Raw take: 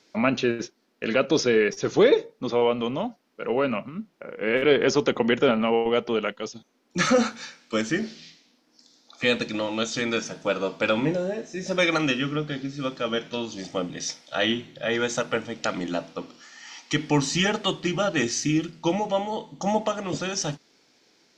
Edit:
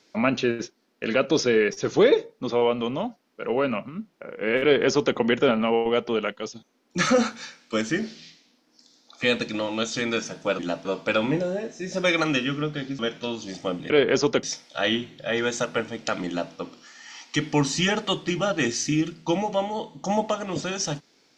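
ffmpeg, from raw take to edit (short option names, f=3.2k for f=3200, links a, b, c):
-filter_complex "[0:a]asplit=6[a][b][c][d][e][f];[a]atrim=end=10.592[g];[b]atrim=start=15.838:end=16.102[h];[c]atrim=start=10.588:end=12.732[i];[d]atrim=start=13.088:end=14.002[j];[e]atrim=start=4.628:end=5.162[k];[f]atrim=start=13.998[l];[g][h]acrossfade=d=0.004:c1=hsin:c2=hsin[m];[m][i]acrossfade=d=0.004:c1=hsin:c2=hsin[n];[n][j]acrossfade=d=0.004:c1=hsin:c2=hsin[o];[o][k]acrossfade=d=0.004:c1=hsin:c2=hsin[p];[p][l]acrossfade=d=0.004:c1=hsin:c2=hsin"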